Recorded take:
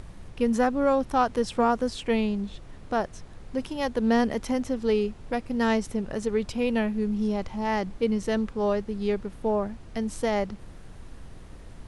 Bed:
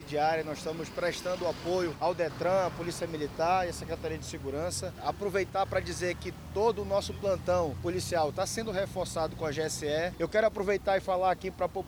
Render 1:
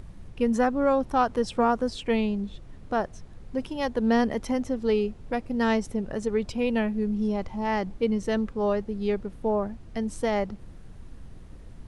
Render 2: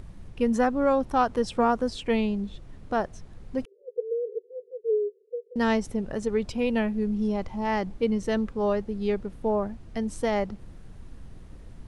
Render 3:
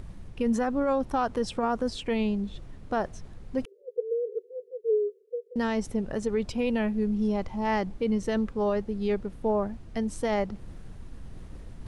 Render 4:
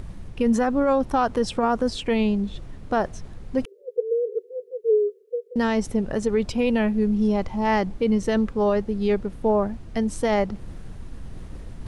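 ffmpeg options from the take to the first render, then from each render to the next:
-af "afftdn=nr=6:nf=-45"
-filter_complex "[0:a]asettb=1/sr,asplit=3[a][b][c];[a]atrim=end=3.654[d];[b]atrim=start=3.65:end=5.56,asetpts=PTS-STARTPTS,afade=t=in:d=0.004:c=qsin,afade=t=out:st=1.906:d=0.004:c=qsin,asuperpass=centerf=440:order=12:qfactor=3.6[e];[c]atrim=start=5.556[f];[d][e]acrossfade=d=0.004:c1=hsin:c2=qsin[g];[g][f]acrossfade=d=0.004:c1=qsin:c2=hsin"
-af "alimiter=limit=-18dB:level=0:latency=1:release=22,areverse,acompressor=mode=upward:threshold=-35dB:ratio=2.5,areverse"
-af "volume=5.5dB"

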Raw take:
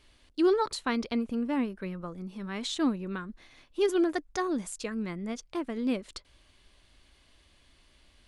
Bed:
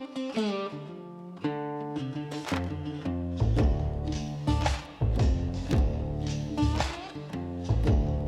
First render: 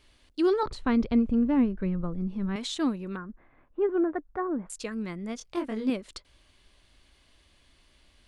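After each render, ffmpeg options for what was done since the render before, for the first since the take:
-filter_complex "[0:a]asettb=1/sr,asplit=3[a][b][c];[a]atrim=end=0.634[d];[b]atrim=start=0.63:end=2.56,asetpts=PTS-STARTPTS,afade=t=in:d=0.004:c=qsin,afade=t=out:st=1.926:d=0.004:c=qsin,aemphasis=mode=reproduction:type=riaa[e];[c]atrim=start=2.556[f];[d][e]acrossfade=d=0.004:c1=hsin:c2=qsin[g];[g][f]acrossfade=d=0.004:c1=qsin:c2=hsin,asettb=1/sr,asplit=3[h][i][j];[h]atrim=end=3.164[k];[i]atrim=start=3.16:end=4.7,asetpts=PTS-STARTPTS,afade=t=in:d=0.004:c=qsin,afade=t=out:st=1.536:d=0.004:c=qsin,lowpass=f=1.6k:w=0.5412,lowpass=f=1.6k:w=1.3066[l];[j]atrim=start=4.696[m];[k][l]acrossfade=d=0.004:c1=hsin:c2=qsin[n];[n][m]acrossfade=d=0.004:c1=qsin:c2=hsin,asettb=1/sr,asplit=3[o][p][q];[o]atrim=end=5.384[r];[p]atrim=start=5.38:end=5.9,asetpts=PTS-STARTPTS,afade=t=in:d=0.004:c=qsin,afade=t=out:st=0.516:d=0.004:c=qsin,asplit=2[s][t];[t]adelay=23,volume=-3.5dB[u];[s][u]amix=inputs=2:normalize=0,atrim=end_sample=22932[v];[q]atrim=start=5.896[w];[r][v]acrossfade=d=0.004:c1=hsin:c2=qsin[x];[x][w]acrossfade=d=0.004:c1=qsin:c2=hsin"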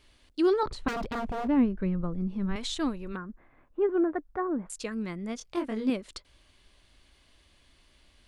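-filter_complex "[0:a]asettb=1/sr,asplit=3[a][b][c];[a]atrim=end=0.884[d];[b]atrim=start=0.88:end=1.48,asetpts=PTS-STARTPTS,afade=t=in:d=0.004:c=qsin,afade=t=out:st=0.596:d=0.004:c=qsin,aeval=exprs='0.0447*(abs(mod(val(0)/0.0447+3,4)-2)-1)':c=same[e];[c]atrim=start=1.476[f];[d][e]acrossfade=d=0.004:c1=hsin:c2=qsin[g];[g][f]acrossfade=d=0.004:c1=qsin:c2=hsin,asplit=3[h][i][j];[h]afade=t=out:st=2.5:d=0.02[k];[i]asubboost=boost=10:cutoff=65,afade=t=in:st=2.5:d=0.02,afade=t=out:st=3.13:d=0.02[l];[j]afade=t=in:st=3.13:d=0.02[m];[k][l][m]amix=inputs=3:normalize=0"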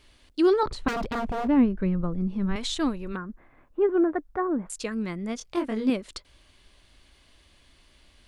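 -af "volume=3.5dB"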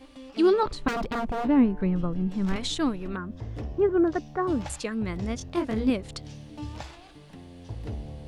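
-filter_complex "[1:a]volume=-11dB[a];[0:a][a]amix=inputs=2:normalize=0"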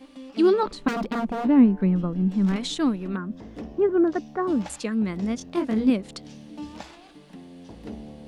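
-af "lowshelf=f=150:t=q:w=3:g=-9"

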